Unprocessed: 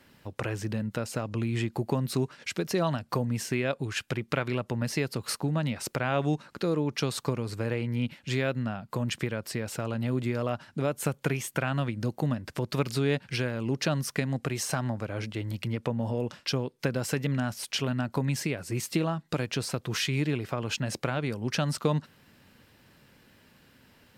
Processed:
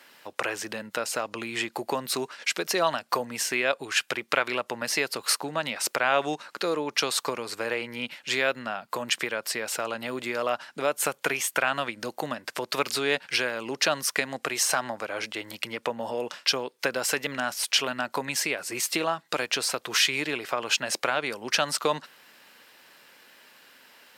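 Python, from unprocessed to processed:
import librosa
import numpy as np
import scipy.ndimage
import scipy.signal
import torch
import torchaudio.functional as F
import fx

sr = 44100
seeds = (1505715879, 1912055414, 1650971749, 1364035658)

y = scipy.signal.sosfilt(scipy.signal.bessel(2, 730.0, 'highpass', norm='mag', fs=sr, output='sos'), x)
y = y * 10.0 ** (8.5 / 20.0)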